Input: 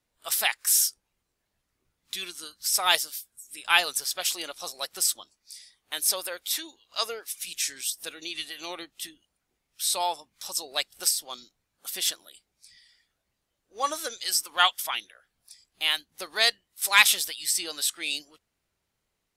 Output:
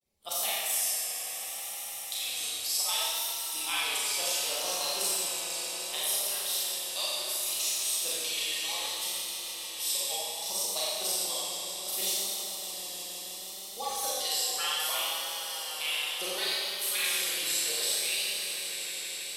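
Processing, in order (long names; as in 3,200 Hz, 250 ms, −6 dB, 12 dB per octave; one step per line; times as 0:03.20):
harmonic-percussive split with one part muted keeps percussive
parametric band 1,500 Hz −14.5 dB 0.77 octaves
downward compressor, threshold −35 dBFS, peak gain reduction 17.5 dB
echo that builds up and dies away 155 ms, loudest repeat 5, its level −14 dB
four-comb reverb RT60 2 s, combs from 29 ms, DRR −8 dB
pitch vibrato 0.67 Hz 72 cents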